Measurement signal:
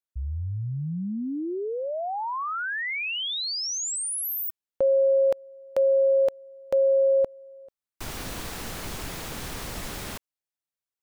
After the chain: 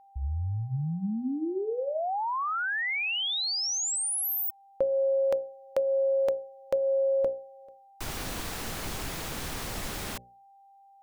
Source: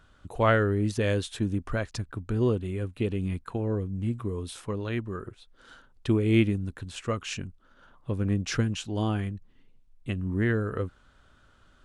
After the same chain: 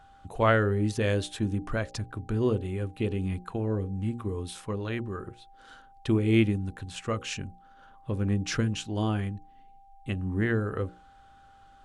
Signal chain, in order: whistle 790 Hz -54 dBFS; hum notches 60/120/180/240/300/360/420/480/540/600 Hz

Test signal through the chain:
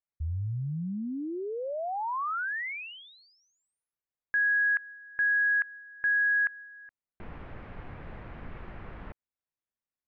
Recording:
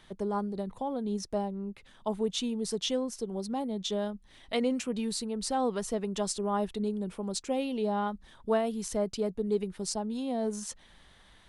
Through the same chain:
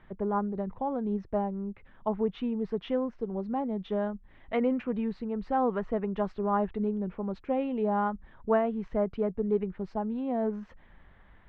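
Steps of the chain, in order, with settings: dynamic bell 1.2 kHz, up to +4 dB, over -42 dBFS, Q 0.78; low-pass 2.2 kHz 24 dB/octave; bass shelf 150 Hz +5.5 dB

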